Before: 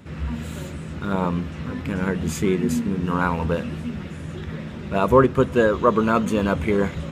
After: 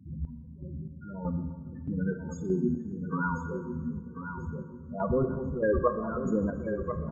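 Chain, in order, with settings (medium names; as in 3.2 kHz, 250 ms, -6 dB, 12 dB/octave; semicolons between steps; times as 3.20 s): 5.10–5.79 s: one-bit comparator; treble shelf 2.1 kHz +5 dB; loudest bins only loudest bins 8; square tremolo 1.6 Hz, depth 65%, duty 40%; feedback delay 1040 ms, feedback 28%, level -9 dB; on a send at -8 dB: reverberation RT60 1.7 s, pre-delay 24 ms; on the sum: trim -5.5 dB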